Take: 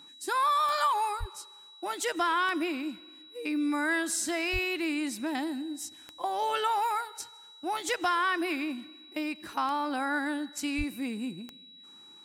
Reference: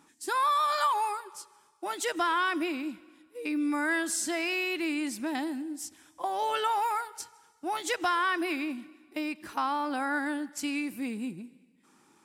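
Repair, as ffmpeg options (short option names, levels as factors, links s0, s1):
-filter_complex "[0:a]adeclick=t=4,bandreject=f=3900:w=30,asplit=3[s0][s1][s2];[s0]afade=t=out:st=1.19:d=0.02[s3];[s1]highpass=f=140:w=0.5412,highpass=f=140:w=1.3066,afade=t=in:st=1.19:d=0.02,afade=t=out:st=1.31:d=0.02[s4];[s2]afade=t=in:st=1.31:d=0.02[s5];[s3][s4][s5]amix=inputs=3:normalize=0,asplit=3[s6][s7][s8];[s6]afade=t=out:st=4.52:d=0.02[s9];[s7]highpass=f=140:w=0.5412,highpass=f=140:w=1.3066,afade=t=in:st=4.52:d=0.02,afade=t=out:st=4.64:d=0.02[s10];[s8]afade=t=in:st=4.64:d=0.02[s11];[s9][s10][s11]amix=inputs=3:normalize=0,asplit=3[s12][s13][s14];[s12]afade=t=out:st=10.77:d=0.02[s15];[s13]highpass=f=140:w=0.5412,highpass=f=140:w=1.3066,afade=t=in:st=10.77:d=0.02,afade=t=out:st=10.89:d=0.02[s16];[s14]afade=t=in:st=10.89:d=0.02[s17];[s15][s16][s17]amix=inputs=3:normalize=0"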